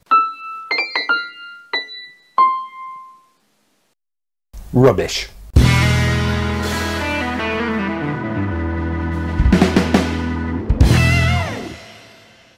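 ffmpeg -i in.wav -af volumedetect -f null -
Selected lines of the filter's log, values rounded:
mean_volume: -18.2 dB
max_volume: -3.4 dB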